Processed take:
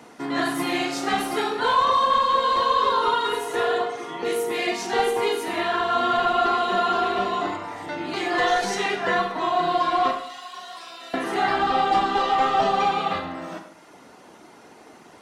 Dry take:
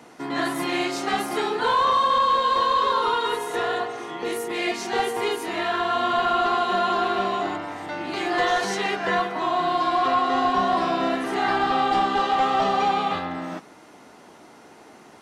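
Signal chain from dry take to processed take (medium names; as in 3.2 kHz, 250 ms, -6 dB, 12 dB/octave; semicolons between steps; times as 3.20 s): 10.11–11.14 s: differentiator; reverb removal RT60 0.66 s; Schroeder reverb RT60 0.74 s, combs from 32 ms, DRR 5.5 dB; trim +1 dB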